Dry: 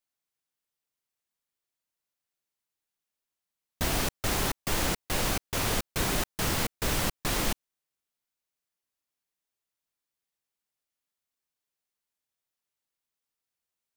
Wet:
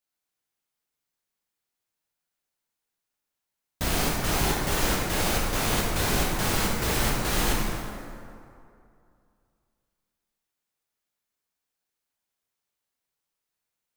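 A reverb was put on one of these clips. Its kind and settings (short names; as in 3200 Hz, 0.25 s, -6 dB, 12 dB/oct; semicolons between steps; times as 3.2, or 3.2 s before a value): plate-style reverb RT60 2.5 s, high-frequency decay 0.55×, DRR -3.5 dB; gain -1 dB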